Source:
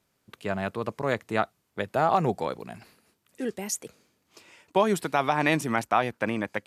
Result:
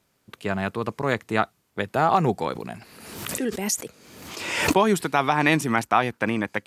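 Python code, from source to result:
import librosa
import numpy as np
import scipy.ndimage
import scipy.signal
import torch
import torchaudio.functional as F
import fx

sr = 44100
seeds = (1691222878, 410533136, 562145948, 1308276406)

y = fx.dynamic_eq(x, sr, hz=590.0, q=2.8, threshold_db=-40.0, ratio=4.0, max_db=-5)
y = fx.pre_swell(y, sr, db_per_s=47.0, at=(2.46, 5.04))
y = F.gain(torch.from_numpy(y), 4.5).numpy()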